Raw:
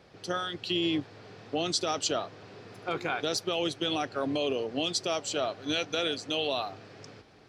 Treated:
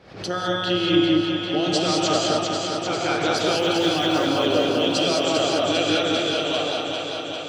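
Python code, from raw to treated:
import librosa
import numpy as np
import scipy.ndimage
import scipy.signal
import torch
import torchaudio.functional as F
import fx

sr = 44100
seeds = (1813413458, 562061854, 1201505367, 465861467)

p1 = fx.fade_out_tail(x, sr, length_s=1.72)
p2 = fx.high_shelf(p1, sr, hz=8600.0, db=-11.5)
p3 = fx.quant_float(p2, sr, bits=4, at=(3.59, 4.25))
p4 = p3 + fx.echo_alternate(p3, sr, ms=199, hz=860.0, feedback_pct=84, wet_db=-3.0, dry=0)
p5 = fx.rev_gated(p4, sr, seeds[0], gate_ms=230, shape='rising', drr_db=-2.0)
p6 = fx.pre_swell(p5, sr, db_per_s=97.0)
y = p6 * librosa.db_to_amplitude(4.0)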